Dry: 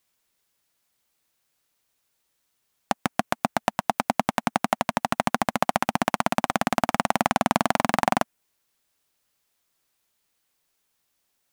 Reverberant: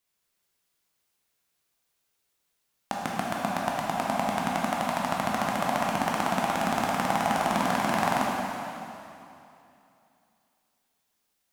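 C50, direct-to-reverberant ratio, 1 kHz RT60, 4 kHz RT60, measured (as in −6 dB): −1.5 dB, −4.0 dB, 2.8 s, 2.6 s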